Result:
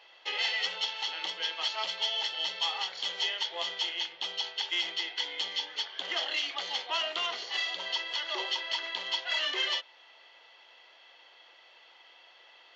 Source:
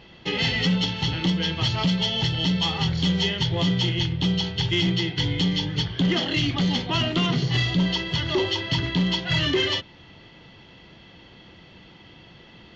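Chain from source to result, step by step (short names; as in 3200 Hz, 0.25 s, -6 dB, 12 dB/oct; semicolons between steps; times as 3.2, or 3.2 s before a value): HPF 590 Hz 24 dB/oct; gain -5 dB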